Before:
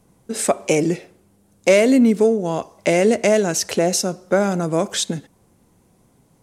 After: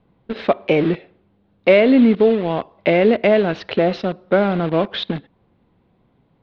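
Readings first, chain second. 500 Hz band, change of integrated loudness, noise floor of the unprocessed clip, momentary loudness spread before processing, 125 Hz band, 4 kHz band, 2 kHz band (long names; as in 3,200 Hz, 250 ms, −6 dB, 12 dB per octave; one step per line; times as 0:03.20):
+1.5 dB, +1.0 dB, −58 dBFS, 10 LU, +1.5 dB, −1.5 dB, +2.0 dB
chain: in parallel at −4.5 dB: bit reduction 4 bits
on the sum: Butterworth low-pass 3,900 Hz 48 dB per octave
level −2.5 dB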